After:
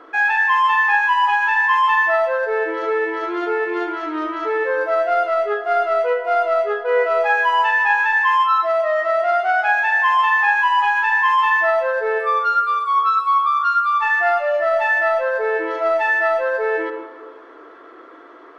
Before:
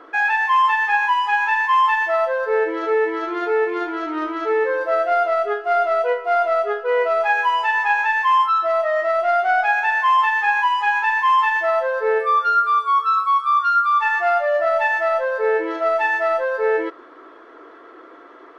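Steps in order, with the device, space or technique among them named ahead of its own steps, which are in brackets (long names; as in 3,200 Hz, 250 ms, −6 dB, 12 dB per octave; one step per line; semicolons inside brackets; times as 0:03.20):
filtered reverb send (on a send: high-pass filter 330 Hz 12 dB per octave + low-pass filter 3,400 Hz + convolution reverb RT60 1.5 s, pre-delay 25 ms, DRR 6.5 dB)
0:08.51–0:10.52: on the sum: high-pass filter 280 Hz 12 dB per octave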